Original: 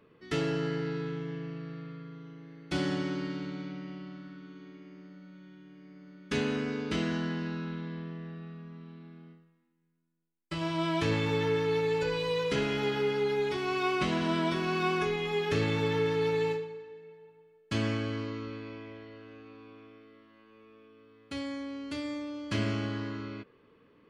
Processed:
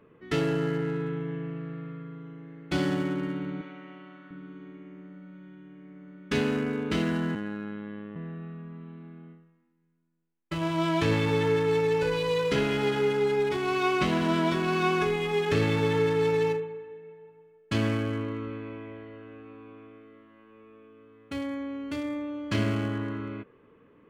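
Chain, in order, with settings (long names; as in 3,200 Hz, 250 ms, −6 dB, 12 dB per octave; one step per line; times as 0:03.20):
adaptive Wiener filter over 9 samples
0:03.61–0:04.31: meter weighting curve A
0:07.35–0:08.16: phases set to zero 104 Hz
level +4 dB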